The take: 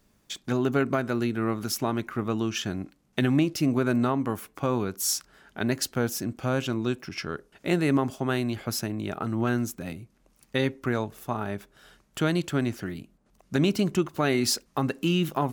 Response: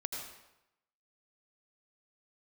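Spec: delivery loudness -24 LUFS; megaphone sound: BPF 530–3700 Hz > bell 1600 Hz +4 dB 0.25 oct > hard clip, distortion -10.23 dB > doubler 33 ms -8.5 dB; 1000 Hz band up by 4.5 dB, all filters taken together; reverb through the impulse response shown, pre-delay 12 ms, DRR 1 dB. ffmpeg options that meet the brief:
-filter_complex "[0:a]equalizer=f=1k:t=o:g=6,asplit=2[a][b];[1:a]atrim=start_sample=2205,adelay=12[c];[b][c]afir=irnorm=-1:irlink=0,volume=-2dB[d];[a][d]amix=inputs=2:normalize=0,highpass=530,lowpass=3.7k,equalizer=f=1.6k:t=o:w=0.25:g=4,asoftclip=type=hard:threshold=-22.5dB,asplit=2[e][f];[f]adelay=33,volume=-8.5dB[g];[e][g]amix=inputs=2:normalize=0,volume=5.5dB"

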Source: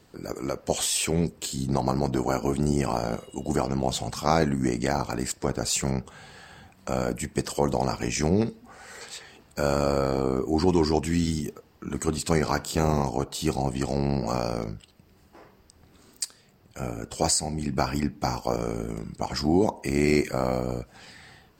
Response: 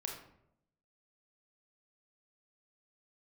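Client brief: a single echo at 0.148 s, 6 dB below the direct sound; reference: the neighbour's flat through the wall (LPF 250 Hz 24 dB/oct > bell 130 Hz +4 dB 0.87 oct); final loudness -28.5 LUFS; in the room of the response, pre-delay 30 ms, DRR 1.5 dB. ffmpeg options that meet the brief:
-filter_complex "[0:a]aecho=1:1:148:0.501,asplit=2[a][b];[1:a]atrim=start_sample=2205,adelay=30[c];[b][c]afir=irnorm=-1:irlink=0,volume=-1dB[d];[a][d]amix=inputs=2:normalize=0,lowpass=f=250:w=0.5412,lowpass=f=250:w=1.3066,equalizer=f=130:t=o:w=0.87:g=4,volume=-1.5dB"

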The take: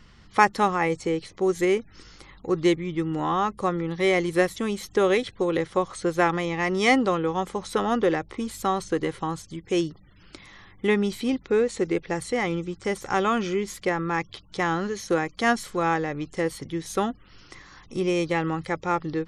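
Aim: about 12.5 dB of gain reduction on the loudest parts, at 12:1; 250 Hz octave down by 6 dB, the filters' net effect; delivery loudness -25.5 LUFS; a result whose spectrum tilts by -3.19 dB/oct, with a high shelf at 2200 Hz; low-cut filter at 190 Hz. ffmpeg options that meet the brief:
-af "highpass=190,equalizer=f=250:t=o:g=-8,highshelf=f=2.2k:g=4.5,acompressor=threshold=-25dB:ratio=12,volume=6dB"

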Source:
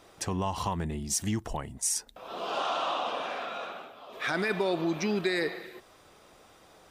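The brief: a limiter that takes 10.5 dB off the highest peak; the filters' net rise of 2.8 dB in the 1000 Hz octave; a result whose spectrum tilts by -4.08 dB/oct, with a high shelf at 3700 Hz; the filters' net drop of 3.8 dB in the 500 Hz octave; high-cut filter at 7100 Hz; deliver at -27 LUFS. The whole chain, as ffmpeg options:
-af "lowpass=7.1k,equalizer=f=500:t=o:g=-7,equalizer=f=1k:t=o:g=6,highshelf=f=3.7k:g=-5,volume=9dB,alimiter=limit=-17dB:level=0:latency=1"

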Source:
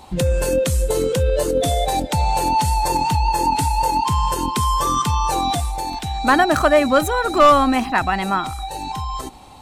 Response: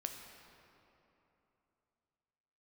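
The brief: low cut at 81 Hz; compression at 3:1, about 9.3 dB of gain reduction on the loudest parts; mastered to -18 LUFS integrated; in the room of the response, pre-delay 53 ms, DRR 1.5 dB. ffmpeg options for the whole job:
-filter_complex "[0:a]highpass=81,acompressor=threshold=-22dB:ratio=3,asplit=2[a][b];[1:a]atrim=start_sample=2205,adelay=53[c];[b][c]afir=irnorm=-1:irlink=0,volume=-0.5dB[d];[a][d]amix=inputs=2:normalize=0,volume=4.5dB"

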